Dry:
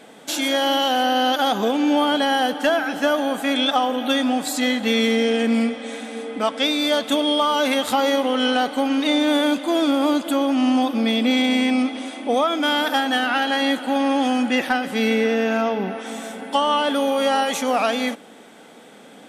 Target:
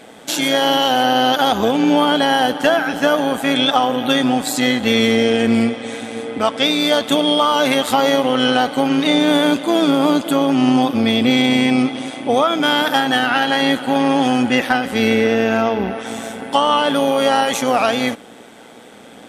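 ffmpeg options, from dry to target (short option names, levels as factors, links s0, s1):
-af "tremolo=f=120:d=0.519,volume=2.11"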